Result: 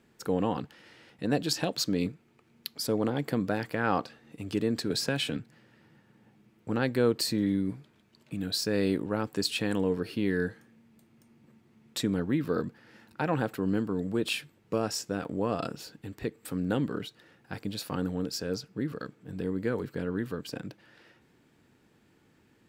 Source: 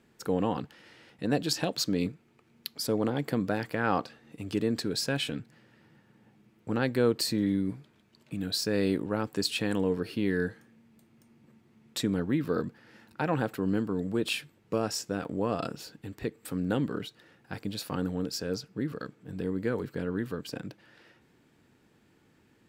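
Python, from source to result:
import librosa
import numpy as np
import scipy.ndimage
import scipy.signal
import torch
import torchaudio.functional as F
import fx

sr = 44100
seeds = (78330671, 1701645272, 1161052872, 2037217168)

y = fx.band_squash(x, sr, depth_pct=70, at=(4.9, 5.37))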